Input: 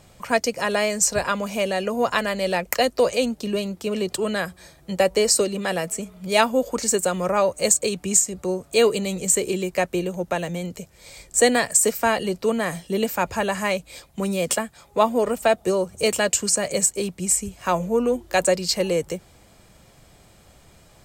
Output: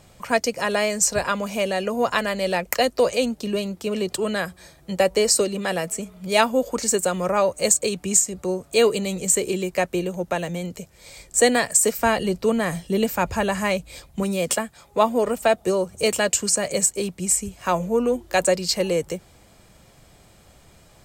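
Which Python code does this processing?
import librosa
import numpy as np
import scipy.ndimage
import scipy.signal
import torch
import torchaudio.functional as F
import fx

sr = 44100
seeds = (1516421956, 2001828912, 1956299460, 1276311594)

y = fx.low_shelf(x, sr, hz=140.0, db=9.5, at=(11.98, 14.23))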